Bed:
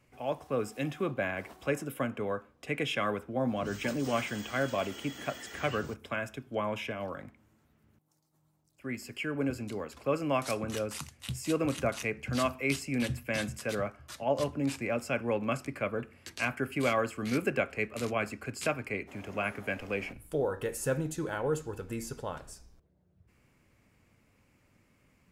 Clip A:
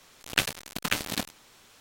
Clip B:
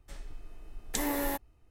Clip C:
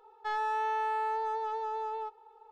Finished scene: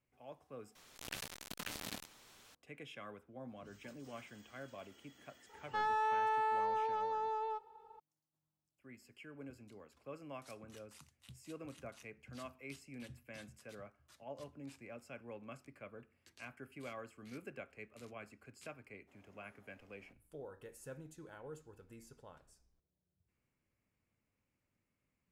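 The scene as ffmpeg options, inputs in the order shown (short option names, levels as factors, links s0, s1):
-filter_complex "[0:a]volume=0.112[s0];[1:a]acompressor=threshold=0.0126:ratio=6:attack=12:release=23:knee=6:detection=rms[s1];[s0]asplit=2[s2][s3];[s2]atrim=end=0.754[s4];[s1]atrim=end=1.8,asetpts=PTS-STARTPTS,volume=0.531[s5];[s3]atrim=start=2.546[s6];[3:a]atrim=end=2.51,asetpts=PTS-STARTPTS,volume=0.75,afade=t=in:d=0.004:c=hsin,afade=t=out:st=2.506:d=0.004:c=hsin,adelay=242109S[s7];[s4][s5]acrossfade=d=0.004:c1=hsin:c2=hsin[s8];[s8][s6]acrossfade=d=0.004:c1=hsin:c2=hsin[s9];[s9][s7]amix=inputs=2:normalize=0"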